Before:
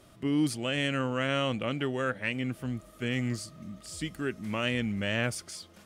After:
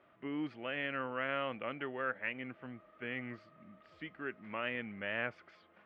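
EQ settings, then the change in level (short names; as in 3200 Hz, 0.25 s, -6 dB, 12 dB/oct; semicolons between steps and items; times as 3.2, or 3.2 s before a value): HPF 790 Hz 6 dB/oct; LPF 2300 Hz 24 dB/oct; -2.5 dB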